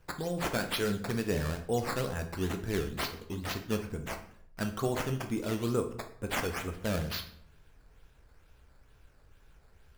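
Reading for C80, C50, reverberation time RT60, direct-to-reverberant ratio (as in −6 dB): 15.0 dB, 10.5 dB, 0.65 s, 5.5 dB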